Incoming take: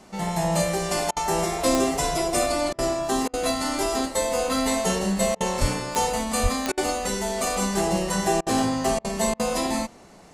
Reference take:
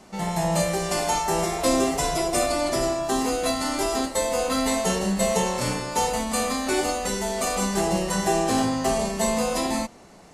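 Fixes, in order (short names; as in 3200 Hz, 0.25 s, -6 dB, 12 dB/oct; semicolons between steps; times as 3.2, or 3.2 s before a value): de-click; de-plosive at 5.6/6.42; interpolate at 1.11/2.73/3.28/5.35/6.72/8.41/8.99/9.34, 54 ms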